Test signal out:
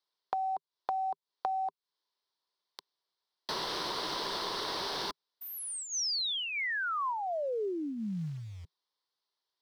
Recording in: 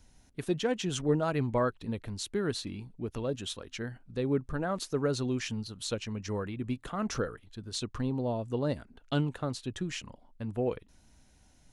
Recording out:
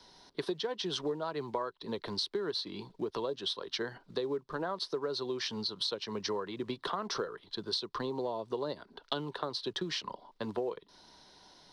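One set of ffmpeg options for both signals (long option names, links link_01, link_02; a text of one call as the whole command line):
ffmpeg -i in.wav -filter_complex "[0:a]equalizer=frequency=160:width_type=o:width=0.33:gain=3,equalizer=frequency=250:width_type=o:width=0.33:gain=-8,equalizer=frequency=400:width_type=o:width=0.33:gain=6,equalizer=frequency=1000:width_type=o:width=0.33:gain=10,equalizer=frequency=2500:width_type=o:width=0.33:gain=-5,acrossover=split=130|920|4700[link_01][link_02][link_03][link_04];[link_03]aexciter=amount=5.5:drive=6.1:freq=3700[link_05];[link_01][link_02][link_05][link_04]amix=inputs=4:normalize=0,acrusher=bits=9:mode=log:mix=0:aa=0.000001,acrossover=split=210 6700:gain=0.0891 1 0.141[link_06][link_07][link_08];[link_06][link_07][link_08]amix=inputs=3:normalize=0,acompressor=threshold=-39dB:ratio=12,volume=7.5dB" out.wav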